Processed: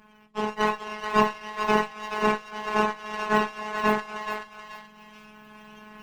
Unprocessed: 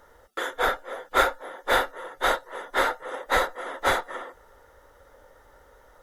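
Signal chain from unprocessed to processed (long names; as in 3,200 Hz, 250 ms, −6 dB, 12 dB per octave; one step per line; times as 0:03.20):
frequency axis turned over on the octave scale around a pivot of 1,200 Hz
camcorder AGC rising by 5.1 dB per second
notch filter 1,300 Hz, Q 21
phases set to zero 213 Hz
hum removal 162 Hz, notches 33
on a send: feedback echo with a high-pass in the loop 429 ms, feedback 36%, high-pass 740 Hz, level −6 dB
on the sum: windowed peak hold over 5 samples
level +3 dB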